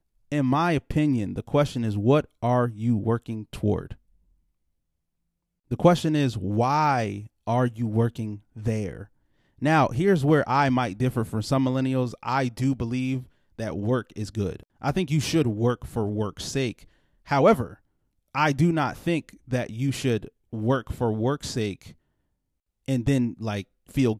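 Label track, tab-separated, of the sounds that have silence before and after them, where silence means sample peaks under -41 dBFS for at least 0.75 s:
5.710000	21.920000	sound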